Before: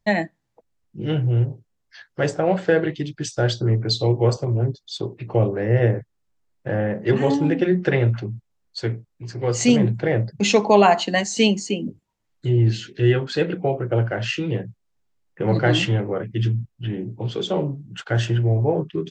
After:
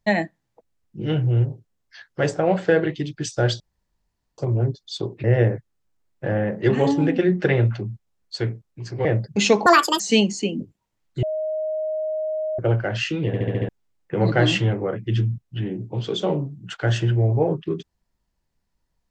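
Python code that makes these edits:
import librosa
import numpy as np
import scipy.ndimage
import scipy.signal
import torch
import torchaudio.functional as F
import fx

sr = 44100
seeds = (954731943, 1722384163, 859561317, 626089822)

y = fx.edit(x, sr, fx.room_tone_fill(start_s=3.6, length_s=0.78),
    fx.cut(start_s=5.24, length_s=0.43),
    fx.cut(start_s=9.48, length_s=0.61),
    fx.speed_span(start_s=10.7, length_s=0.57, speed=1.69),
    fx.bleep(start_s=12.5, length_s=1.36, hz=624.0, db=-22.5),
    fx.stutter_over(start_s=14.54, slice_s=0.07, count=6), tone=tone)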